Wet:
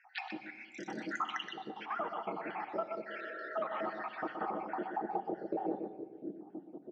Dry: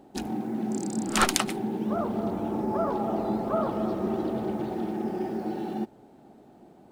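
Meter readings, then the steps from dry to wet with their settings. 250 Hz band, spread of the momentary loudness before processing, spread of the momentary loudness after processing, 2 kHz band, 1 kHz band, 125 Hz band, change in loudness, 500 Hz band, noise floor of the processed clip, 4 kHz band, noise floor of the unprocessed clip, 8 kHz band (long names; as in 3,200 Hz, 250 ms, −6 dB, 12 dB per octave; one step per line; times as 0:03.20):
−15.0 dB, 8 LU, 8 LU, −5.0 dB, −6.0 dB, −20.0 dB, −11.0 dB, −10.0 dB, −56 dBFS, −12.0 dB, −54 dBFS, below −25 dB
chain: time-frequency cells dropped at random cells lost 71%
low-shelf EQ 120 Hz −10 dB
comb filter 6.5 ms, depth 32%
on a send: single-tap delay 123 ms −9.5 dB
on the sum: band-pass filter sweep 2,100 Hz → 330 Hz, 0:03.93–0:06.31
healed spectral selection 0:03.15–0:03.53, 260–1,900 Hz before
downward compressor 6 to 1, threshold −49 dBFS, peak gain reduction 16.5 dB
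Butterworth low-pass 6,100 Hz
high-shelf EQ 3,900 Hz −11 dB
rectangular room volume 2,400 cubic metres, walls mixed, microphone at 0.67 metres
level +16 dB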